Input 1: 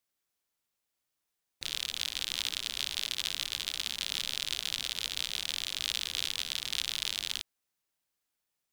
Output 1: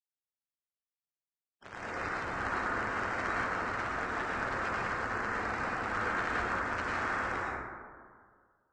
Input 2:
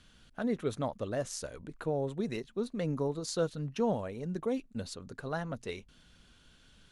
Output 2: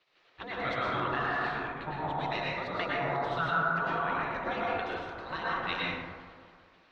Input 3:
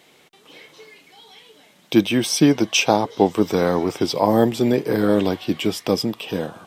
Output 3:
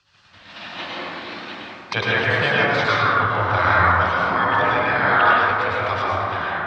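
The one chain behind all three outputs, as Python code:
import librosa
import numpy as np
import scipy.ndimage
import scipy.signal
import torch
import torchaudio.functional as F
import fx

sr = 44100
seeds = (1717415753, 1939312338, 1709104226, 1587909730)

p1 = scipy.signal.sosfilt(scipy.signal.butter(2, 44.0, 'highpass', fs=sr, output='sos'), x)
p2 = fx.peak_eq(p1, sr, hz=150.0, db=-14.5, octaves=0.37)
p3 = fx.spec_gate(p2, sr, threshold_db=-15, keep='weak')
p4 = scipy.signal.sosfilt(scipy.signal.butter(4, 3600.0, 'lowpass', fs=sr, output='sos'), p3)
p5 = fx.rev_plate(p4, sr, seeds[0], rt60_s=2.6, hf_ratio=0.25, predelay_ms=90, drr_db=-7.0)
p6 = fx.dynamic_eq(p5, sr, hz=1400.0, q=2.0, threshold_db=-47.0, ratio=4.0, max_db=8)
p7 = fx.over_compress(p6, sr, threshold_db=-42.0, ratio=-1.0)
p8 = p6 + F.gain(torch.from_numpy(p7), 1.5).numpy()
p9 = fx.band_widen(p8, sr, depth_pct=40)
y = F.gain(torch.from_numpy(p9), 3.5).numpy()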